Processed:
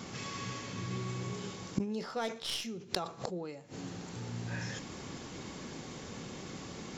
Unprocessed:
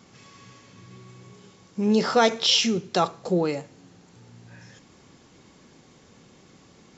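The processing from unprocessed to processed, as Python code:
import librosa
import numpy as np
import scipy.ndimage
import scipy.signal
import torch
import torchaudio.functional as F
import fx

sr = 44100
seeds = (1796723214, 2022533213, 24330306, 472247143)

y = fx.tracing_dist(x, sr, depth_ms=0.038)
y = fx.gate_flip(y, sr, shuts_db=-26.0, range_db=-26)
y = fx.sustainer(y, sr, db_per_s=130.0)
y = y * 10.0 ** (9.0 / 20.0)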